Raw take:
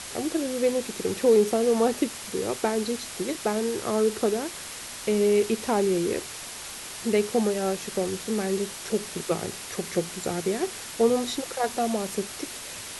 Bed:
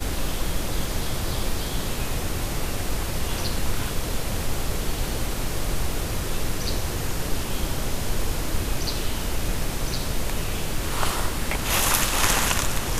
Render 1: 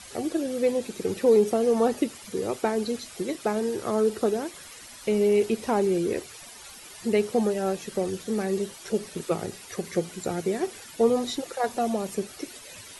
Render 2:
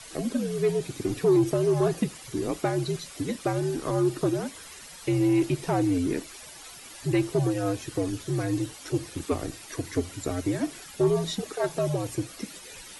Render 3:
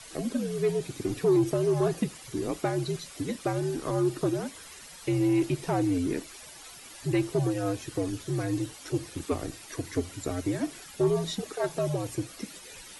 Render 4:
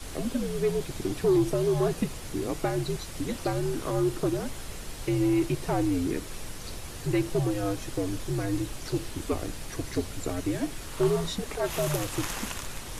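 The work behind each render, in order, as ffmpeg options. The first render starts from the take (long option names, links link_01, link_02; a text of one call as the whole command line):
ffmpeg -i in.wav -af "afftdn=noise_reduction=12:noise_floor=-39" out.wav
ffmpeg -i in.wav -af "afreqshift=-79,asoftclip=type=tanh:threshold=-13dB" out.wav
ffmpeg -i in.wav -af "volume=-2dB" out.wav
ffmpeg -i in.wav -i bed.wav -filter_complex "[1:a]volume=-13.5dB[link_01];[0:a][link_01]amix=inputs=2:normalize=0" out.wav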